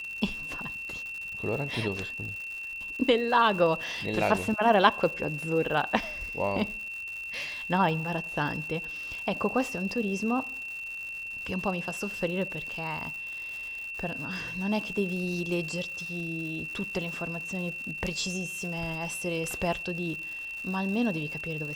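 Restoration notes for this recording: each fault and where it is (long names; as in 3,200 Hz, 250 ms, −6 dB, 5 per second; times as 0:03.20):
surface crackle 190 per second −37 dBFS
whistle 2,700 Hz −35 dBFS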